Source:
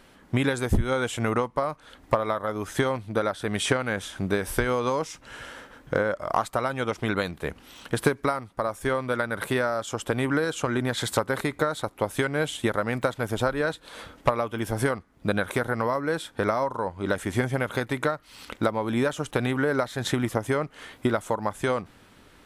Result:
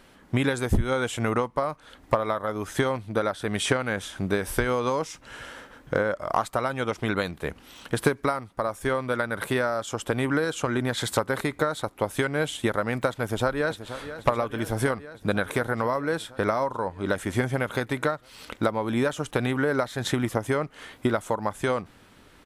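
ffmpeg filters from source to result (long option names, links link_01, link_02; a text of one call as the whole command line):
ffmpeg -i in.wav -filter_complex "[0:a]asplit=2[link_01][link_02];[link_02]afade=type=in:start_time=13.22:duration=0.01,afade=type=out:start_time=13.87:duration=0.01,aecho=0:1:480|960|1440|1920|2400|2880|3360|3840|4320|4800|5280|5760:0.251189|0.188391|0.141294|0.10597|0.0794777|0.0596082|0.0447062|0.0335296|0.0251472|0.0188604|0.0141453|0.010609[link_03];[link_01][link_03]amix=inputs=2:normalize=0" out.wav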